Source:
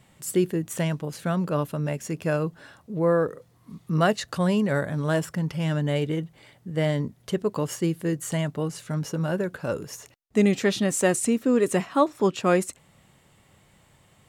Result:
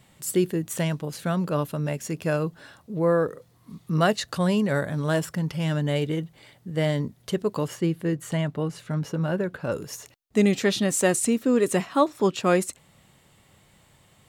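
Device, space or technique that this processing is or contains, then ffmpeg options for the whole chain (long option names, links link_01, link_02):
presence and air boost: -filter_complex "[0:a]equalizer=frequency=4000:width_type=o:width=0.77:gain=3,highshelf=frequency=11000:gain=5,asettb=1/sr,asplit=3[link_01][link_02][link_03];[link_01]atrim=end=7.684[link_04];[link_02]atrim=start=7.68:end=9.72,asetpts=PTS-STARTPTS,afade=type=in:duration=0.004:curve=qsin,afade=type=out:start_time=2.036:duration=0.004:curve=qsin,bass=frequency=250:gain=1,treble=frequency=4000:gain=-9[link_05];[link_03]atrim=start=9.716[link_06];[link_04][link_05]acrossfade=duration=0.004:curve1=hsin:curve2=qsin[link_07];[link_07][link_06]acrossfade=duration=0.004:curve1=qsin:curve2=hsin"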